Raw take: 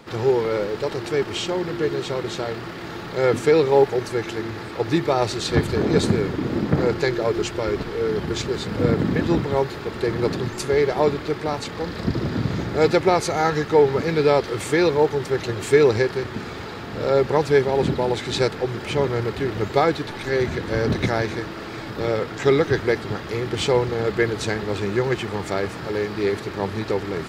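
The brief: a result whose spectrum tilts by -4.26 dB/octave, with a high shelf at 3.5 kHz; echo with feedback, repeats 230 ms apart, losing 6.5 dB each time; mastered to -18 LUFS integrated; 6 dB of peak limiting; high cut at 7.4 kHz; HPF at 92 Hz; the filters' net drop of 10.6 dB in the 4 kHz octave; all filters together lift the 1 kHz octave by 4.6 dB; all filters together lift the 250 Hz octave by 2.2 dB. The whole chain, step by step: high-pass 92 Hz; low-pass 7.4 kHz; peaking EQ 250 Hz +3 dB; peaking EQ 1 kHz +7 dB; treble shelf 3.5 kHz -8 dB; peaking EQ 4 kHz -8 dB; peak limiter -8 dBFS; feedback delay 230 ms, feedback 47%, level -6.5 dB; trim +2.5 dB

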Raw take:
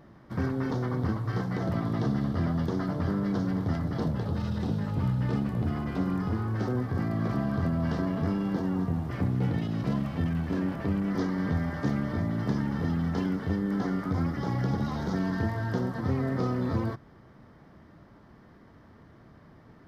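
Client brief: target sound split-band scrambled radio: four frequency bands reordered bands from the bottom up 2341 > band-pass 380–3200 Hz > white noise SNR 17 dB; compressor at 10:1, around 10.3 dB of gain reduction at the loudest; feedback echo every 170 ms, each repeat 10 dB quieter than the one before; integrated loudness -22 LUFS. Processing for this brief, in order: compression 10:1, threshold -34 dBFS; feedback delay 170 ms, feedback 32%, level -10 dB; four frequency bands reordered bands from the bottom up 2341; band-pass 380–3200 Hz; white noise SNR 17 dB; trim +19 dB

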